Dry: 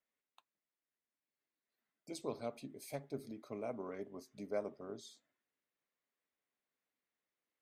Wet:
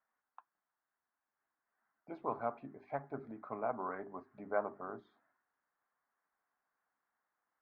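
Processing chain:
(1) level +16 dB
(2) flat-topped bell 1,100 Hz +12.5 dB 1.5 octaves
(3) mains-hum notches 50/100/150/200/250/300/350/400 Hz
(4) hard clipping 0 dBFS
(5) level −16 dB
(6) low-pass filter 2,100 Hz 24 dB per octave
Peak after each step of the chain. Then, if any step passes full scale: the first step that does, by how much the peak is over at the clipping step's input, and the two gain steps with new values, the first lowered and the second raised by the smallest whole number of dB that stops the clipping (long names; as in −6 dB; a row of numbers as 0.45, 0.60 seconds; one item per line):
−10.5, −4.5, −4.5, −4.5, −20.5, −20.5 dBFS
no step passes full scale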